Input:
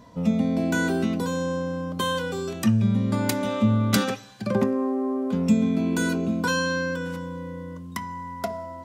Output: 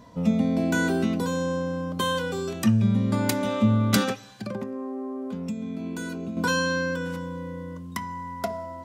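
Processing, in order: 4.12–6.37 compressor 4:1, threshold -31 dBFS, peak gain reduction 14 dB

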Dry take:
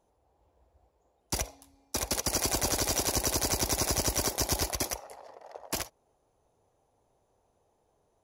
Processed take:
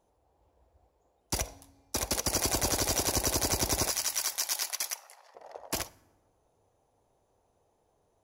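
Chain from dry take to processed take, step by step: 3.9–5.35 HPF 1300 Hz 12 dB/oct; reverb RT60 1.1 s, pre-delay 5 ms, DRR 19 dB

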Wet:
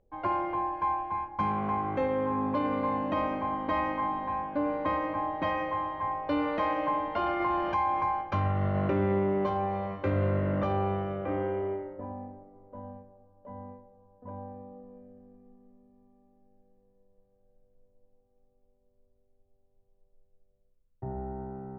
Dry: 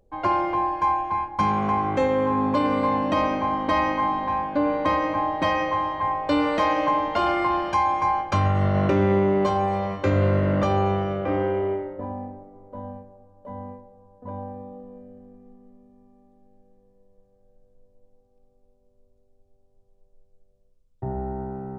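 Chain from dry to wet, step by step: LPF 2700 Hz 12 dB/oct; 7.4–8.05 fast leveller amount 50%; gain -7 dB

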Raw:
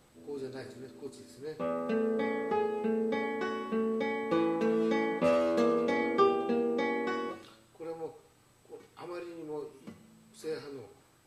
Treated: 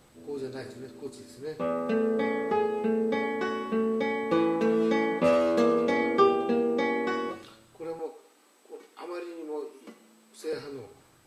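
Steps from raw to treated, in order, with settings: 7.99–10.53 steep high-pass 240 Hz 36 dB/oct; gain +4 dB

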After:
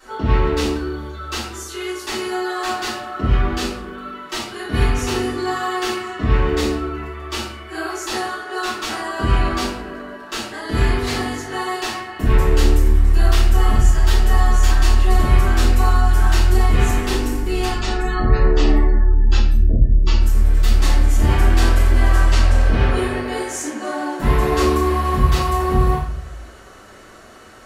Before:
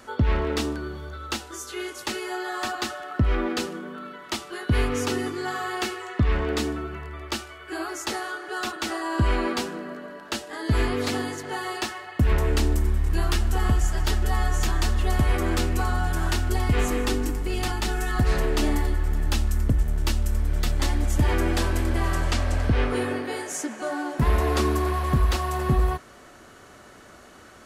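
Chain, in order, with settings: 17.64–20.21 spectral gate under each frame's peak -30 dB strong; low shelf 320 Hz -5.5 dB; shoebox room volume 90 m³, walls mixed, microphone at 3.7 m; gain -7.5 dB

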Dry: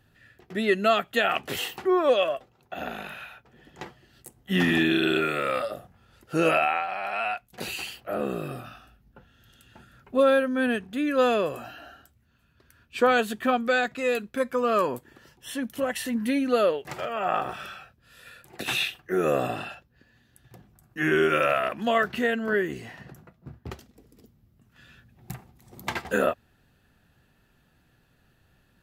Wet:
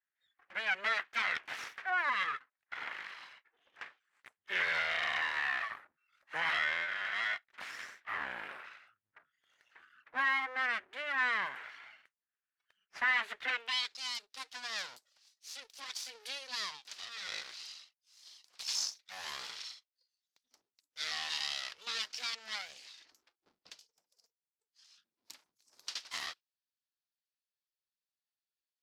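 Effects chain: spectral noise reduction 24 dB; full-wave rectifier; band-pass sweep 1800 Hz -> 4900 Hz, 13.36–13.96; in parallel at +3 dB: limiter -29 dBFS, peak gain reduction 9 dB; on the sum: gain -4 dB

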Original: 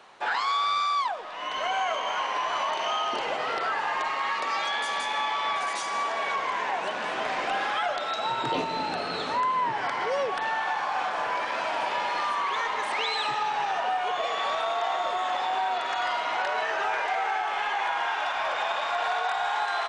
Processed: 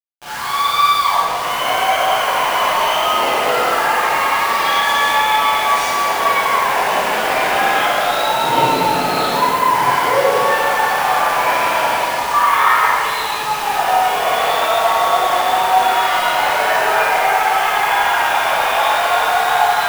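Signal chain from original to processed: 12.31–12.87 bell 1400 Hz +14 dB 2.1 oct; AGC gain up to 15 dB; bit-crush 4-bit; reverb RT60 2.3 s, pre-delay 21 ms, DRR -10.5 dB; gain -12 dB

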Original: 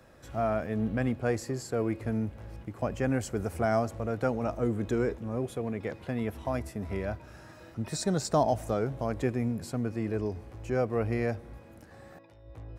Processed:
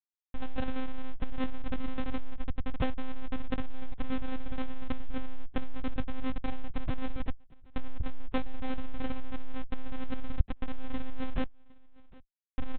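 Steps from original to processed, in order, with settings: reverse delay 0.106 s, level -7 dB; recorder AGC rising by 5.7 dB/s; LPF 1700 Hz 24 dB/oct; gate with hold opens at -34 dBFS; comb 6.4 ms, depth 97%; dynamic EQ 1300 Hz, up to -7 dB, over -43 dBFS, Q 1.2; Schmitt trigger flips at -30.5 dBFS; vibrato 0.47 Hz 50 cents; full-wave rectifier; echo 0.759 s -24 dB; monotone LPC vocoder at 8 kHz 260 Hz; gain +4.5 dB

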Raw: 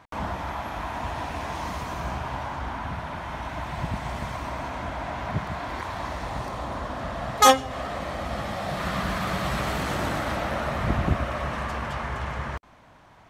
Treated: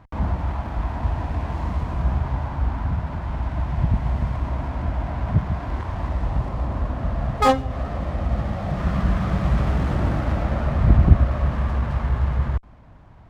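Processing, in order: RIAA curve playback; running maximum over 5 samples; gain -2 dB

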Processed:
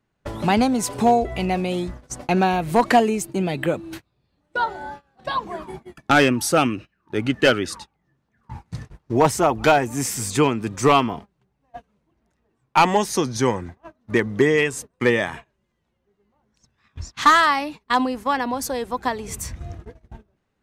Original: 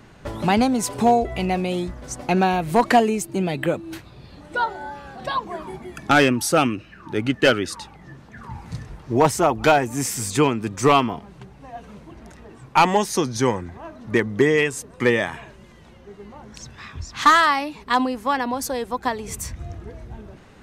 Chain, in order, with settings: gate -34 dBFS, range -26 dB

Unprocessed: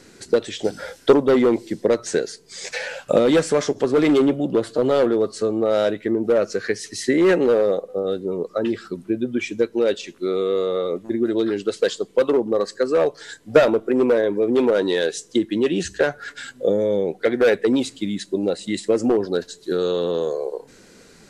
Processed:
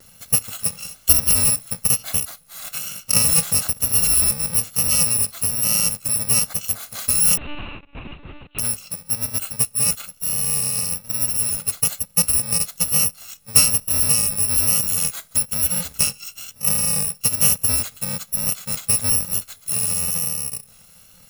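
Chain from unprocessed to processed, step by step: FFT order left unsorted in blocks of 128 samples; 7.37–8.59 monotone LPC vocoder at 8 kHz 290 Hz; vibrato 1.1 Hz 31 cents

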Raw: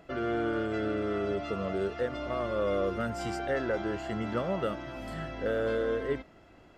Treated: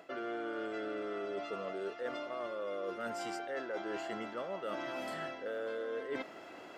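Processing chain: HPF 350 Hz 12 dB/oct; reverse; compressor 16:1, threshold -45 dBFS, peak gain reduction 19 dB; reverse; gain +9 dB

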